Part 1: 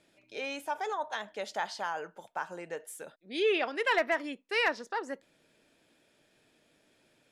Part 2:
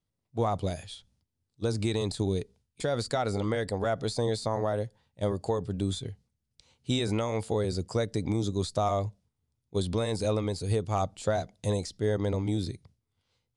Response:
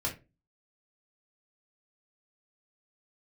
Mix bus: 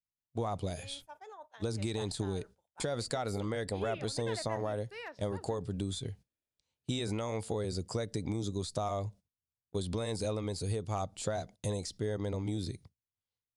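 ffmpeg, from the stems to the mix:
-filter_complex "[0:a]adynamicequalizer=threshold=0.00794:dfrequency=490:dqfactor=0.73:tfrequency=490:tqfactor=0.73:attack=5:release=100:ratio=0.375:range=2:mode=boostabove:tftype=bell,adelay=400,volume=0.119[s0];[1:a]agate=range=0.398:threshold=0.00158:ratio=16:detection=peak,acompressor=threshold=0.0224:ratio=3,volume=1[s1];[s0][s1]amix=inputs=2:normalize=0,agate=range=0.2:threshold=0.00282:ratio=16:detection=peak,highshelf=f=7000:g=5"

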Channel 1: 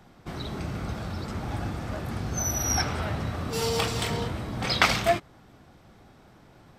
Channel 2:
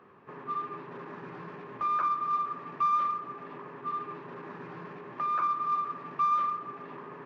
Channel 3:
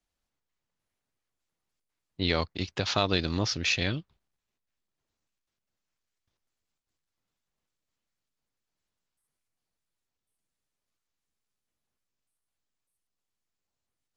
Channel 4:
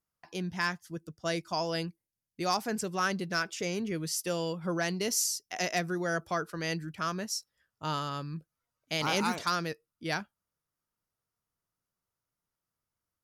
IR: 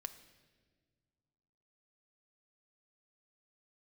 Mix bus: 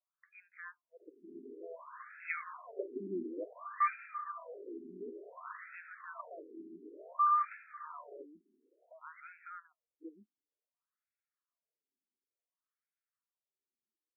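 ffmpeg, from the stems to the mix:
-filter_complex "[0:a]acompressor=threshold=0.0316:ratio=6,bandpass=f=1000:t=q:w=1.2:csg=0,adelay=2450,volume=0.75[s0];[1:a]adelay=1000,volume=0.841[s1];[2:a]asplit=2[s2][s3];[s3]adelay=4.7,afreqshift=-0.75[s4];[s2][s4]amix=inputs=2:normalize=1,volume=0.596,asplit=2[s5][s6];[s6]volume=0.531[s7];[3:a]alimiter=level_in=1.5:limit=0.0631:level=0:latency=1:release=437,volume=0.668,volume=0.473,asplit=2[s8][s9];[s9]apad=whole_len=407219[s10];[s0][s10]sidechaincompress=threshold=0.00178:ratio=8:attack=16:release=136[s11];[4:a]atrim=start_sample=2205[s12];[s7][s12]afir=irnorm=-1:irlink=0[s13];[s11][s1][s5][s8][s13]amix=inputs=5:normalize=0,asuperstop=centerf=830:order=4:qfactor=3.9,afftfilt=real='re*between(b*sr/1024,280*pow(1900/280,0.5+0.5*sin(2*PI*0.56*pts/sr))/1.41,280*pow(1900/280,0.5+0.5*sin(2*PI*0.56*pts/sr))*1.41)':imag='im*between(b*sr/1024,280*pow(1900/280,0.5+0.5*sin(2*PI*0.56*pts/sr))/1.41,280*pow(1900/280,0.5+0.5*sin(2*PI*0.56*pts/sr))*1.41)':win_size=1024:overlap=0.75"

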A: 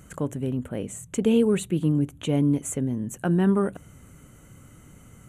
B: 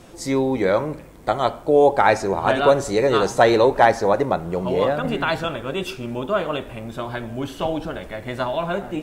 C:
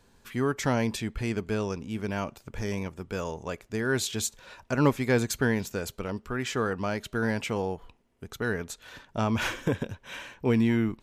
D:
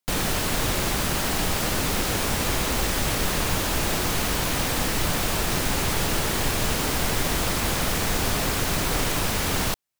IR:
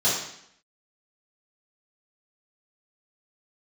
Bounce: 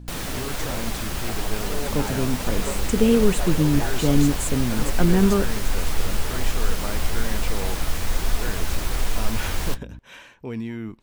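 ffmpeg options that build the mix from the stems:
-filter_complex "[0:a]adelay=1750,volume=1.33[s0];[1:a]volume=0.1[s1];[2:a]alimiter=limit=0.1:level=0:latency=1,volume=0.668[s2];[3:a]flanger=delay=4:depth=9.6:regen=50:speed=1.2:shape=sinusoidal,asubboost=boost=6:cutoff=59,aeval=exprs='val(0)+0.0158*(sin(2*PI*60*n/s)+sin(2*PI*2*60*n/s)/2+sin(2*PI*3*60*n/s)/3+sin(2*PI*4*60*n/s)/4+sin(2*PI*5*60*n/s)/5)':c=same,volume=0.794[s3];[s0][s1][s2][s3]amix=inputs=4:normalize=0"

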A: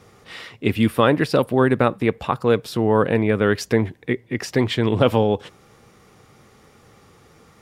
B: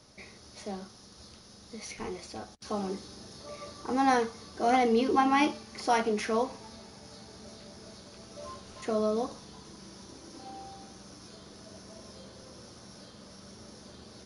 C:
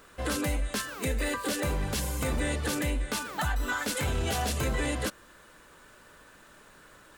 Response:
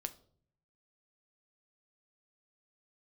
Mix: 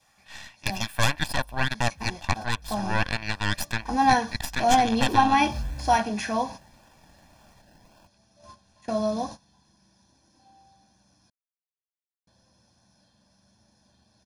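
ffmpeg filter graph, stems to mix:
-filter_complex "[0:a]adynamicequalizer=threshold=0.0158:dfrequency=1400:dqfactor=1.7:tfrequency=1400:tqfactor=1.7:attack=5:release=100:ratio=0.375:range=1.5:mode=cutabove:tftype=bell,highpass=990,aeval=exprs='0.447*(cos(1*acos(clip(val(0)/0.447,-1,1)))-cos(1*PI/2))+0.02*(cos(7*acos(clip(val(0)/0.447,-1,1)))-cos(7*PI/2))+0.158*(cos(8*acos(clip(val(0)/0.447,-1,1)))-cos(8*PI/2))':c=same,volume=0.531,asplit=2[s0][s1];[1:a]agate=range=0.126:threshold=0.01:ratio=16:detection=peak,volume=1.26,asplit=3[s2][s3][s4];[s2]atrim=end=11.3,asetpts=PTS-STARTPTS,afade=t=out:st=11.296:d=0.004:c=hsin[s5];[s3]atrim=start=11.3:end=12.27,asetpts=PTS-STARTPTS,volume=0[s6];[s4]atrim=start=12.27,asetpts=PTS-STARTPTS,afade=t=in:d=0.004:c=hsin[s7];[s5][s6][s7]concat=n=3:v=0:a=1[s8];[2:a]acrossover=split=160[s9][s10];[s10]acompressor=threshold=0.00631:ratio=5[s11];[s9][s11]amix=inputs=2:normalize=0,acrusher=samples=30:mix=1:aa=0.000001:lfo=1:lforange=18:lforate=1.8,adelay=900,volume=0.631[s12];[s1]apad=whole_len=355901[s13];[s12][s13]sidechaincompress=threshold=0.00282:ratio=4:attack=5.8:release=128[s14];[s0][s8][s14]amix=inputs=3:normalize=0,aecho=1:1:1.2:0.74"

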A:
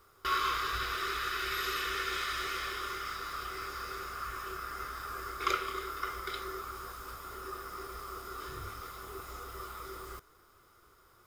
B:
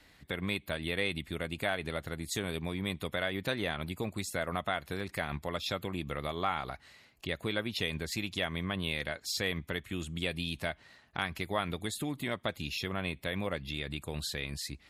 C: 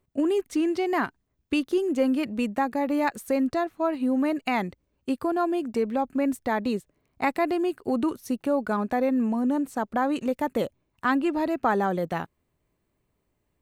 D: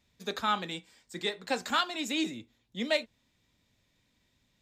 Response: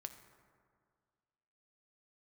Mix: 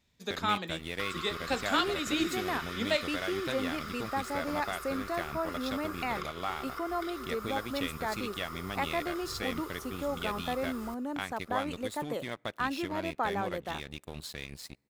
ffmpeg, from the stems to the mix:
-filter_complex "[0:a]acompressor=threshold=0.0126:ratio=6,adelay=750,volume=0.944[s0];[1:a]aeval=exprs='sgn(val(0))*max(abs(val(0))-0.00708,0)':c=same,volume=0.75,asplit=2[s1][s2];[s2]volume=0.126[s3];[2:a]highpass=f=450:p=1,adelay=1550,volume=0.473[s4];[3:a]volume=0.891[s5];[4:a]atrim=start_sample=2205[s6];[s3][s6]afir=irnorm=-1:irlink=0[s7];[s0][s1][s4][s5][s7]amix=inputs=5:normalize=0"

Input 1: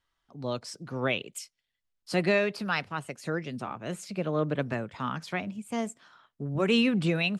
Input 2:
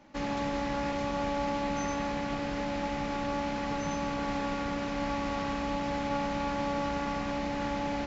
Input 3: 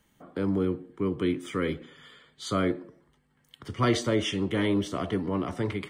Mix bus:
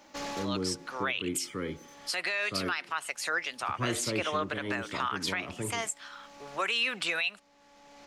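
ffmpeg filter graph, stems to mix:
-filter_complex "[0:a]highpass=1200,dynaudnorm=f=510:g=3:m=2.82,volume=1.41,asplit=2[s0][s1];[1:a]bass=f=250:g=-13,treble=f=4000:g=11,asoftclip=type=tanh:threshold=0.0178,volume=1.26[s2];[2:a]volume=0.447[s3];[s1]apad=whole_len=355765[s4];[s2][s4]sidechaincompress=threshold=0.00251:ratio=5:attack=5.9:release=603[s5];[s0][s5][s3]amix=inputs=3:normalize=0,alimiter=limit=0.1:level=0:latency=1:release=120"

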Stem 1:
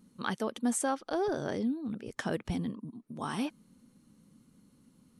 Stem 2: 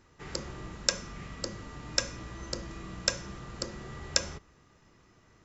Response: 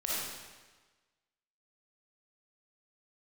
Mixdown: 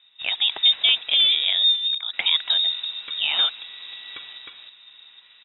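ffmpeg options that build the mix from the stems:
-filter_complex "[0:a]volume=1.33[s0];[1:a]asoftclip=type=tanh:threshold=0.133,acompressor=threshold=0.00398:ratio=2,volume=0.794,asplit=3[s1][s2][s3];[s1]atrim=end=1.56,asetpts=PTS-STARTPTS,afade=t=out:st=1.556:d=0.004:c=hsin[s4];[s2]atrim=start=1.56:end=2.13,asetpts=PTS-STARTPTS,volume=0[s5];[s3]atrim=start=2.13,asetpts=PTS-STARTPTS,afade=t=in:d=0.004:c=hsin[s6];[s4][s5][s6]concat=n=3:v=0:a=1,asplit=2[s7][s8];[s8]volume=0.708,aecho=0:1:310:1[s9];[s0][s7][s9]amix=inputs=3:normalize=0,equalizer=f=61:t=o:w=0.76:g=-8,dynaudnorm=f=210:g=3:m=3.16,lowpass=f=3300:t=q:w=0.5098,lowpass=f=3300:t=q:w=0.6013,lowpass=f=3300:t=q:w=0.9,lowpass=f=3300:t=q:w=2.563,afreqshift=-3900"

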